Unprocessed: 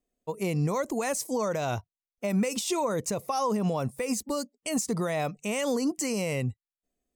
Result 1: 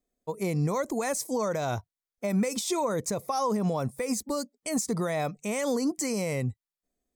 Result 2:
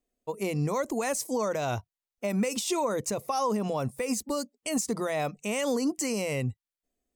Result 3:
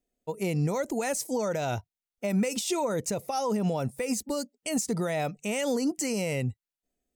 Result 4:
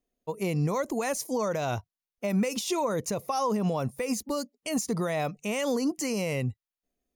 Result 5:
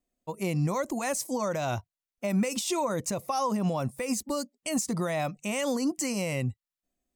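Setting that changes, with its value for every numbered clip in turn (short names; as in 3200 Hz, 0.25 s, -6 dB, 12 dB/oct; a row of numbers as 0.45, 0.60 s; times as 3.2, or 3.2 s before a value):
notch, frequency: 2800, 170, 1100, 8000, 440 Hz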